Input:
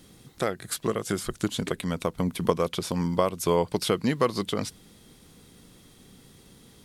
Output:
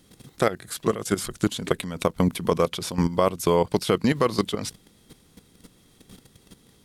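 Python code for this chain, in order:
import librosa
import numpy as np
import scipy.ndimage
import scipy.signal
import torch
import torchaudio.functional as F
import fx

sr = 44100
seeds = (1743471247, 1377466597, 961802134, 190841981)

y = fx.level_steps(x, sr, step_db=13)
y = y * 10.0 ** (7.5 / 20.0)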